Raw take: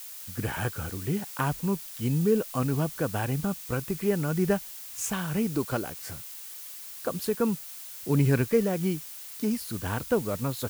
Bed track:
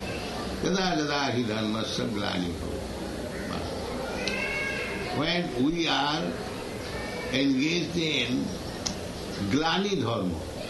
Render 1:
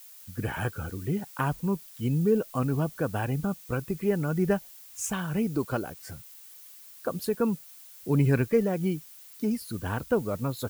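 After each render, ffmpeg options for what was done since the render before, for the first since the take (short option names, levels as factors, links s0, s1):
-af "afftdn=nr=9:nf=-42"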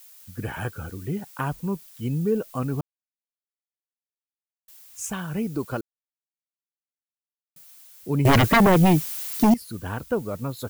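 -filter_complex "[0:a]asettb=1/sr,asplit=3[s0][s1][s2];[s0]atrim=end=8.254[s3];[s1]atrim=start=8.25:end=9.54,asetpts=PTS-STARTPTS,afade=t=in:d=0.004:c=qsin,afade=t=out:st=1.286:d=0.004:c=qsin,aeval=exprs='0.251*sin(PI/2*4.47*val(0)/0.251)':c=same[s4];[s2]atrim=start=9.536[s5];[s3][s4]acrossfade=d=0.004:c1=hsin:c2=qsin[s6];[s6][s5]acrossfade=d=0.004:c1=qsin:c2=hsin,asplit=5[s7][s8][s9][s10][s11];[s7]atrim=end=2.81,asetpts=PTS-STARTPTS,afade=t=out:st=2.806:d=0.004:c=hsin[s12];[s8]atrim=start=2.81:end=4.68,asetpts=PTS-STARTPTS,volume=0[s13];[s9]atrim=start=4.68:end=5.81,asetpts=PTS-STARTPTS,afade=t=in:d=0.004:c=hsin,afade=t=out:st=1.126:d=0.004:c=hsin[s14];[s10]atrim=start=5.81:end=7.56,asetpts=PTS-STARTPTS,volume=0[s15];[s11]atrim=start=7.56,asetpts=PTS-STARTPTS,afade=t=in:d=0.004:c=hsin[s16];[s12][s13][s14][s15][s16]concat=n=5:v=0:a=1"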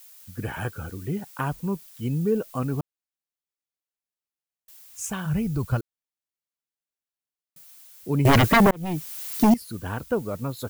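-filter_complex "[0:a]asplit=3[s0][s1][s2];[s0]afade=t=out:st=5.25:d=0.02[s3];[s1]asubboost=boost=10.5:cutoff=100,afade=t=in:st=5.25:d=0.02,afade=t=out:st=5.79:d=0.02[s4];[s2]afade=t=in:st=5.79:d=0.02[s5];[s3][s4][s5]amix=inputs=3:normalize=0,asplit=2[s6][s7];[s6]atrim=end=8.71,asetpts=PTS-STARTPTS,afade=t=out:st=8.706:d=0.004:c=hsin[s8];[s7]atrim=start=8.71,asetpts=PTS-STARTPTS,afade=t=in:d=0.71[s9];[s8][s9]concat=n=2:v=0:a=1"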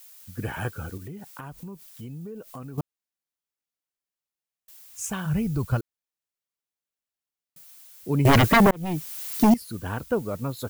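-filter_complex "[0:a]asettb=1/sr,asplit=3[s0][s1][s2];[s0]atrim=end=0.974[s3];[s1]atrim=start=0.97:end=2.78,asetpts=PTS-STARTPTS,afade=t=in:d=0.004:c=qsin,afade=t=out:st=1.806:d=0.004:c=qsin,acompressor=threshold=0.0158:ratio=6:attack=3.2:release=140:knee=1:detection=peak[s4];[s2]atrim=start=2.776[s5];[s3][s4]acrossfade=d=0.004:c1=hsin:c2=qsin[s6];[s6][s5]acrossfade=d=0.004:c1=qsin:c2=hsin"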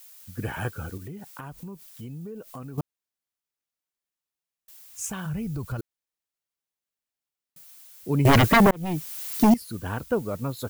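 -filter_complex "[0:a]asettb=1/sr,asplit=3[s0][s1][s2];[s0]atrim=end=5.104[s3];[s1]atrim=start=5.1:end=5.79,asetpts=PTS-STARTPTS,afade=t=in:d=0.004:c=qsin,afade=t=out:st=0.686:d=0.004:c=qsin,acompressor=threshold=0.0316:ratio=2.5:attack=3.2:release=140:knee=1:detection=peak[s4];[s2]atrim=start=5.786[s5];[s3][s4]acrossfade=d=0.004:c1=hsin:c2=qsin[s6];[s6][s5]acrossfade=d=0.004:c1=qsin:c2=hsin"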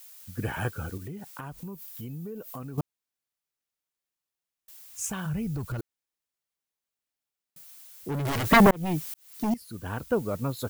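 -filter_complex "[0:a]asettb=1/sr,asplit=3[s0][s1][s2];[s0]atrim=end=1.644[s3];[s1]atrim=start=1.64:end=2.62,asetpts=PTS-STARTPTS,afade=t=in:d=0.004:c=qsin,afade=t=out:st=0.976:d=0.004:c=qsin,equalizer=f=15000:w=2.3:g=13.5[s4];[s2]atrim=start=2.616[s5];[s3][s4]acrossfade=d=0.004:c1=hsin:c2=qsin[s6];[s6][s5]acrossfade=d=0.004:c1=qsin:c2=hsin,asettb=1/sr,asplit=3[s7][s8][s9];[s7]atrim=end=5.524[s10];[s8]atrim=start=5.52:end=8.52,asetpts=PTS-STARTPTS,afade=t=in:d=0.004:c=qsin,afade=t=out:st=2.996:d=0.004:c=qsin,volume=23.7,asoftclip=hard,volume=0.0422[s11];[s9]atrim=start=8.516[s12];[s10][s11]acrossfade=d=0.004:c1=hsin:c2=qsin[s13];[s13][s12]acrossfade=d=0.004:c1=qsin:c2=hsin,asplit=2[s14][s15];[s14]atrim=end=9.14,asetpts=PTS-STARTPTS,afade=t=out:st=9.136:d=0.004:c=hsin[s16];[s15]atrim=start=9.14,asetpts=PTS-STARTPTS,afade=t=in:d=1.1[s17];[s16][s17]concat=n=2:v=0:a=1"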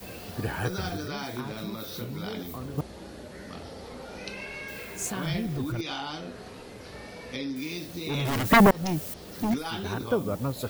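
-filter_complex "[1:a]volume=0.355[s0];[0:a][s0]amix=inputs=2:normalize=0"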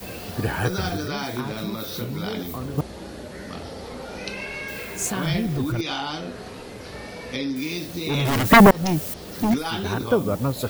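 -af "volume=2"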